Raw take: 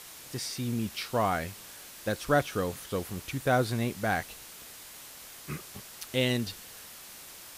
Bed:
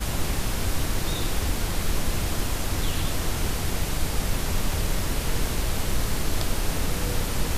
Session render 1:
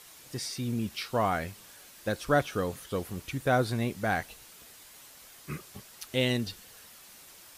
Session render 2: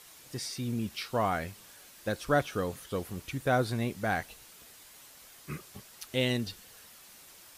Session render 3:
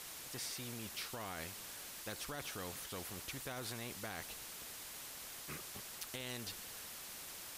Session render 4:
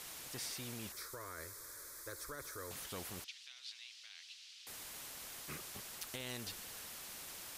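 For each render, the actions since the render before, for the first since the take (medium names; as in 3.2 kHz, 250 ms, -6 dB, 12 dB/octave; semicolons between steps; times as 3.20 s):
noise reduction 6 dB, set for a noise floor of -48 dBFS
trim -1.5 dB
peak limiter -25 dBFS, peak gain reduction 10.5 dB; spectrum-flattening compressor 2:1
0.92–2.71 s: static phaser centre 770 Hz, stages 6; 3.24–4.67 s: Butterworth band-pass 3.8 kHz, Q 1.3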